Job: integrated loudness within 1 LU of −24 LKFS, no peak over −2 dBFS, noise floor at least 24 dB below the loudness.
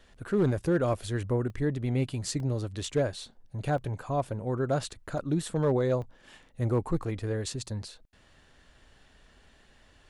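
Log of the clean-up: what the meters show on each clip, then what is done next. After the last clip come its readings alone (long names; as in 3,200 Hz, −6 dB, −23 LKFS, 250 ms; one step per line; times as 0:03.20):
share of clipped samples 0.3%; peaks flattened at −18.5 dBFS; number of dropouts 7; longest dropout 1.6 ms; integrated loudness −30.5 LKFS; sample peak −18.5 dBFS; target loudness −24.0 LKFS
→ clipped peaks rebuilt −18.5 dBFS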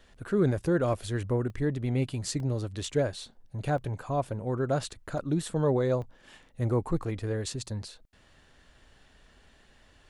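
share of clipped samples 0.0%; number of dropouts 7; longest dropout 1.6 ms
→ repair the gap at 0:00.93/0:01.50/0:02.40/0:03.78/0:05.18/0:06.02/0:07.03, 1.6 ms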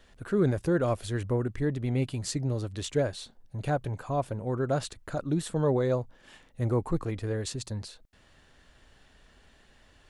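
number of dropouts 0; integrated loudness −30.5 LKFS; sample peak −14.0 dBFS; target loudness −24.0 LKFS
→ level +6.5 dB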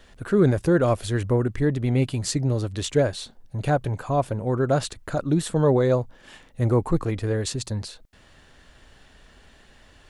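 integrated loudness −24.0 LKFS; sample peak −7.5 dBFS; background noise floor −54 dBFS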